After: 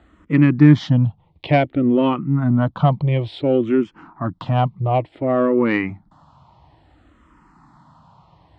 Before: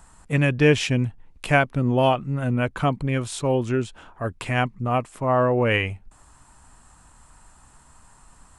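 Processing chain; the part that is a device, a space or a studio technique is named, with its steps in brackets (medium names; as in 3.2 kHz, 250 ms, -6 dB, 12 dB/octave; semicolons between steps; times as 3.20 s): barber-pole phaser into a guitar amplifier (barber-pole phaser -0.57 Hz; saturation -12.5 dBFS, distortion -21 dB; cabinet simulation 79–3600 Hz, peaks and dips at 160 Hz +6 dB, 310 Hz +8 dB, 440 Hz -5 dB, 1.6 kHz -9 dB, 2.6 kHz -8 dB); trim +7.5 dB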